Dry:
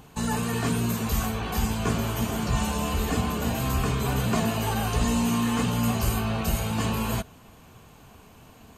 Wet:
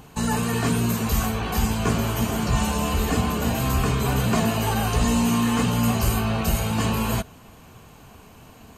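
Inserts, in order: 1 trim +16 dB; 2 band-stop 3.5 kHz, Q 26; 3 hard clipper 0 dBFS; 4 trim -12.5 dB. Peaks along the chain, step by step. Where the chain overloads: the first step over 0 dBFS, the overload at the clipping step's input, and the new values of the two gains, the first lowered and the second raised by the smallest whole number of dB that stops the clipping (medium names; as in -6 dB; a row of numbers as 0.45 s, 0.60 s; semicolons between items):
+3.5 dBFS, +3.5 dBFS, 0.0 dBFS, -12.5 dBFS; step 1, 3.5 dB; step 1 +12 dB, step 4 -8.5 dB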